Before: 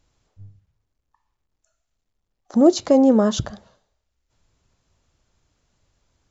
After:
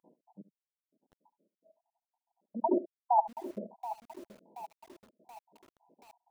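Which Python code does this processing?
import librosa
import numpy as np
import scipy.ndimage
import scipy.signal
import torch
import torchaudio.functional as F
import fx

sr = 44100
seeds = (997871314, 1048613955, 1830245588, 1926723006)

y = fx.spec_dropout(x, sr, seeds[0], share_pct=83)
y = fx.over_compress(y, sr, threshold_db=-33.0, ratio=-1.0)
y = fx.brickwall_bandpass(y, sr, low_hz=170.0, high_hz=1000.0)
y = y + 10.0 ** (-16.5 / 20.0) * np.pad(y, (int(71 * sr / 1000.0), 0))[:len(y)]
y = fx.echo_crushed(y, sr, ms=728, feedback_pct=55, bits=9, wet_db=-13.0)
y = y * librosa.db_to_amplitude(7.5)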